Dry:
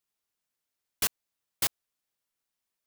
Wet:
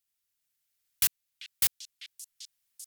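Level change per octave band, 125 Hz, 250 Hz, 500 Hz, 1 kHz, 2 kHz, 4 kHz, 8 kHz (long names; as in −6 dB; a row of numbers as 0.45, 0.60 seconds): −2.0 dB, can't be measured, −10.5 dB, −8.0 dB, −1.5 dB, +1.0 dB, +2.5 dB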